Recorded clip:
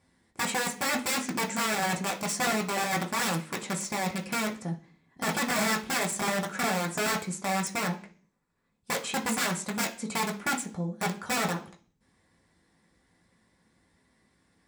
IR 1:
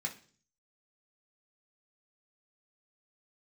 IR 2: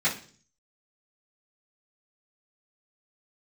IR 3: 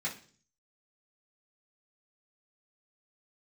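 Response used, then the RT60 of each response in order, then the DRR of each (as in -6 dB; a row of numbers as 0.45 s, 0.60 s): 1; 0.45 s, 0.45 s, 0.45 s; -1.0 dB, -12.5 dB, -8.0 dB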